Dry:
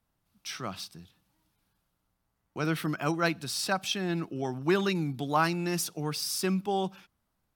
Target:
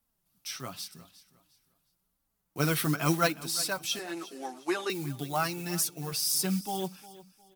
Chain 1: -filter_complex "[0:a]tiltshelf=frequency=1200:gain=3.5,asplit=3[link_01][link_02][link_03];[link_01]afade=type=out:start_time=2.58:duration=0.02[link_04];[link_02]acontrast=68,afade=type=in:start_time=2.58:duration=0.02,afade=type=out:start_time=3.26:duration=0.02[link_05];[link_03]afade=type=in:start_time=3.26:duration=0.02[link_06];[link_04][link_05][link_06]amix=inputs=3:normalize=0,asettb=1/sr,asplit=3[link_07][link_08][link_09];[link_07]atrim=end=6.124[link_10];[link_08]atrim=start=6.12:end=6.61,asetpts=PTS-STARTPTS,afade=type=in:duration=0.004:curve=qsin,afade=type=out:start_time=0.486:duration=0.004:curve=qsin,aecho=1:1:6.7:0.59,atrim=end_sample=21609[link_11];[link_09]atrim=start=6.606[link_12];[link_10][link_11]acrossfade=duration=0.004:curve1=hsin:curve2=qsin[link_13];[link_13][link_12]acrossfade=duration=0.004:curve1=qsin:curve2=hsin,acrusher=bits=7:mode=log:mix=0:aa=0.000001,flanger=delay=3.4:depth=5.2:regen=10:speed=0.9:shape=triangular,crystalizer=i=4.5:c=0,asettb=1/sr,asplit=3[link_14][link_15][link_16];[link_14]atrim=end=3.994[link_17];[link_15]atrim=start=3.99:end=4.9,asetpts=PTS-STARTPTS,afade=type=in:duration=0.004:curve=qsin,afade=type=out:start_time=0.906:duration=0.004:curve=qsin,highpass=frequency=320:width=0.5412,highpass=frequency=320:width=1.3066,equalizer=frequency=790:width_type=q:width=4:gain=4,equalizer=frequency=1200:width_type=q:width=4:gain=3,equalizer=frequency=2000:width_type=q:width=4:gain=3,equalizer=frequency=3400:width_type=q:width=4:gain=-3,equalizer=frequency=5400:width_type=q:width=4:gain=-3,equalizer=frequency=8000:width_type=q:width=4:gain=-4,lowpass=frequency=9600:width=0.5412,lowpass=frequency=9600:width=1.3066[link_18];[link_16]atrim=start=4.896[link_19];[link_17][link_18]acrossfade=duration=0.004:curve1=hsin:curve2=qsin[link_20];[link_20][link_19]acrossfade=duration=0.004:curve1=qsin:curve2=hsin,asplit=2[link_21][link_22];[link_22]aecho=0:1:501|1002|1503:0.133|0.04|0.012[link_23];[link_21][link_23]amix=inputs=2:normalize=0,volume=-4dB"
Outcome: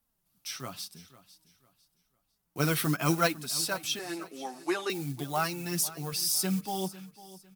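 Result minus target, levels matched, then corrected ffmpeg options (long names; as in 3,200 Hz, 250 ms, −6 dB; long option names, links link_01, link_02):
echo 144 ms late
-filter_complex "[0:a]tiltshelf=frequency=1200:gain=3.5,asplit=3[link_01][link_02][link_03];[link_01]afade=type=out:start_time=2.58:duration=0.02[link_04];[link_02]acontrast=68,afade=type=in:start_time=2.58:duration=0.02,afade=type=out:start_time=3.26:duration=0.02[link_05];[link_03]afade=type=in:start_time=3.26:duration=0.02[link_06];[link_04][link_05][link_06]amix=inputs=3:normalize=0,asettb=1/sr,asplit=3[link_07][link_08][link_09];[link_07]atrim=end=6.124[link_10];[link_08]atrim=start=6.12:end=6.61,asetpts=PTS-STARTPTS,afade=type=in:duration=0.004:curve=qsin,afade=type=out:start_time=0.486:duration=0.004:curve=qsin,aecho=1:1:6.7:0.59,atrim=end_sample=21609[link_11];[link_09]atrim=start=6.606[link_12];[link_10][link_11]acrossfade=duration=0.004:curve1=hsin:curve2=qsin[link_13];[link_13][link_12]acrossfade=duration=0.004:curve1=qsin:curve2=hsin,acrusher=bits=7:mode=log:mix=0:aa=0.000001,flanger=delay=3.4:depth=5.2:regen=10:speed=0.9:shape=triangular,crystalizer=i=4.5:c=0,asettb=1/sr,asplit=3[link_14][link_15][link_16];[link_14]atrim=end=3.994[link_17];[link_15]atrim=start=3.99:end=4.9,asetpts=PTS-STARTPTS,afade=type=in:duration=0.004:curve=qsin,afade=type=out:start_time=0.906:duration=0.004:curve=qsin,highpass=frequency=320:width=0.5412,highpass=frequency=320:width=1.3066,equalizer=frequency=790:width_type=q:width=4:gain=4,equalizer=frequency=1200:width_type=q:width=4:gain=3,equalizer=frequency=2000:width_type=q:width=4:gain=3,equalizer=frequency=3400:width_type=q:width=4:gain=-3,equalizer=frequency=5400:width_type=q:width=4:gain=-3,equalizer=frequency=8000:width_type=q:width=4:gain=-4,lowpass=frequency=9600:width=0.5412,lowpass=frequency=9600:width=1.3066[link_18];[link_16]atrim=start=4.896[link_19];[link_17][link_18]acrossfade=duration=0.004:curve1=hsin:curve2=qsin[link_20];[link_20][link_19]acrossfade=duration=0.004:curve1=qsin:curve2=hsin,asplit=2[link_21][link_22];[link_22]aecho=0:1:357|714|1071:0.133|0.04|0.012[link_23];[link_21][link_23]amix=inputs=2:normalize=0,volume=-4dB"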